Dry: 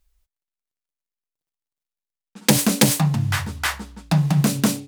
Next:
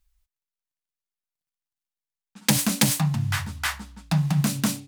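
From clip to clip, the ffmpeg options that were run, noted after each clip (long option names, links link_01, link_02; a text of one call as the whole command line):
ffmpeg -i in.wav -af "equalizer=frequency=430:width_type=o:width=0.93:gain=-11,volume=-3dB" out.wav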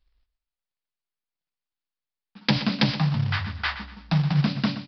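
ffmpeg -i in.wav -af "aresample=11025,acrusher=bits=4:mode=log:mix=0:aa=0.000001,aresample=44100,aecho=1:1:122|244|366:0.237|0.0711|0.0213" out.wav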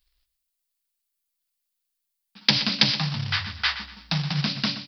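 ffmpeg -i in.wav -af "crystalizer=i=7.5:c=0,volume=-5.5dB" out.wav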